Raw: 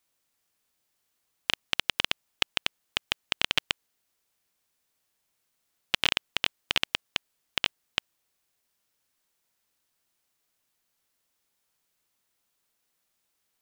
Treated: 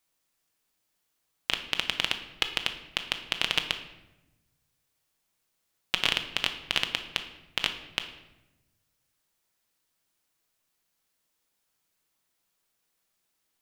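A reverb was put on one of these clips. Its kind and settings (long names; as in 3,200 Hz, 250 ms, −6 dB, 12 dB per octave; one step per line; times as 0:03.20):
rectangular room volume 420 cubic metres, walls mixed, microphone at 0.61 metres
level −1 dB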